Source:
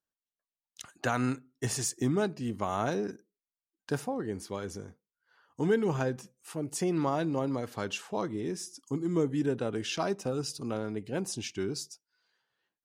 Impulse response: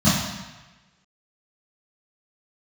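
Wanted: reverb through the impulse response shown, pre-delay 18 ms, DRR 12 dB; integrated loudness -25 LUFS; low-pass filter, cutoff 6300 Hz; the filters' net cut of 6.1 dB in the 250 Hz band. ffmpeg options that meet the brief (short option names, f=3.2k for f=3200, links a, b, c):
-filter_complex "[0:a]lowpass=6.3k,equalizer=f=250:t=o:g=-8.5,asplit=2[a][b];[1:a]atrim=start_sample=2205,adelay=18[c];[b][c]afir=irnorm=-1:irlink=0,volume=-31dB[d];[a][d]amix=inputs=2:normalize=0,volume=9dB"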